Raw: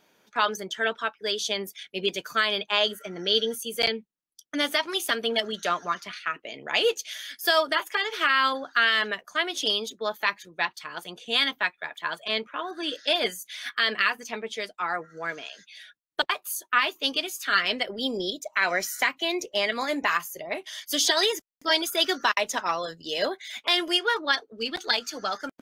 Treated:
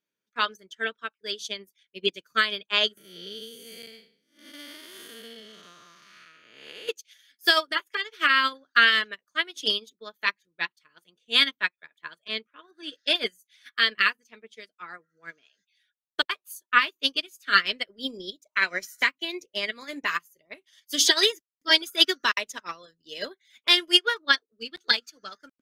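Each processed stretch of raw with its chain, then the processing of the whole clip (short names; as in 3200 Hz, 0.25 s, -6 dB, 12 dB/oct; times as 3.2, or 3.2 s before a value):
2.97–6.89 time blur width 0.318 s + high shelf 5400 Hz +9 dB + three-band squash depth 70%
whole clip: bell 770 Hz -12.5 dB 0.72 oct; upward expander 2.5:1, over -41 dBFS; gain +7.5 dB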